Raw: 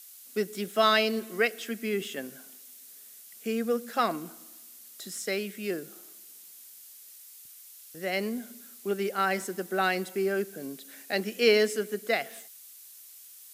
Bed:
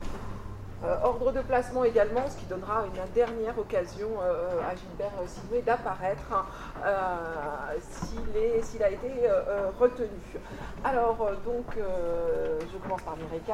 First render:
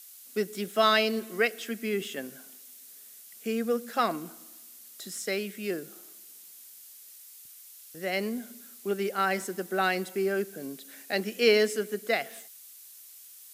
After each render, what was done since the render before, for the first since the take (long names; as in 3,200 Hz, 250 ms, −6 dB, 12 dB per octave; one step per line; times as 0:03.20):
no processing that can be heard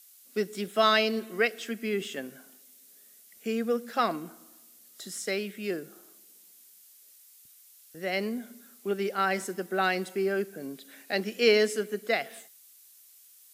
noise reduction from a noise print 6 dB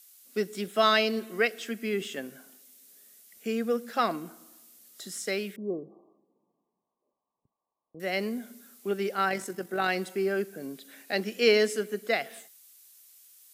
0:05.56–0:08.00: linear-phase brick-wall low-pass 1,200 Hz
0:09.29–0:09.89: amplitude modulation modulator 47 Hz, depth 25%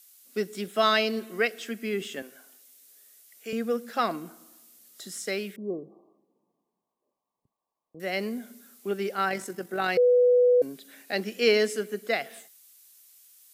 0:02.22–0:03.53: Bessel high-pass filter 480 Hz
0:09.97–0:10.62: beep over 493 Hz −16 dBFS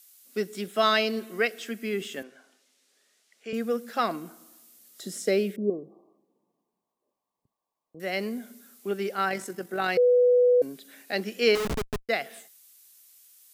0:02.23–0:03.54: high-frequency loss of the air 100 metres
0:05.03–0:05.70: low shelf with overshoot 740 Hz +7 dB, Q 1.5
0:11.55–0:12.09: comparator with hysteresis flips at −28 dBFS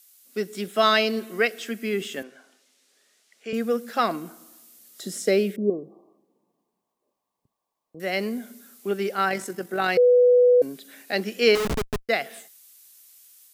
automatic gain control gain up to 3.5 dB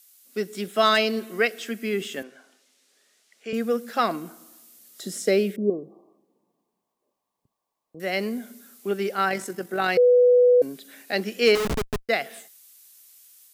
hard clipping −9.5 dBFS, distortion −33 dB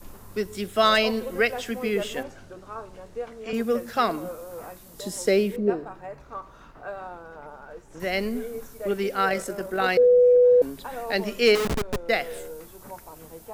mix in bed −8.5 dB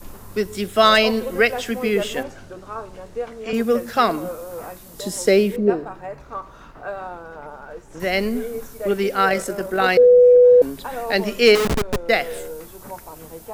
level +5.5 dB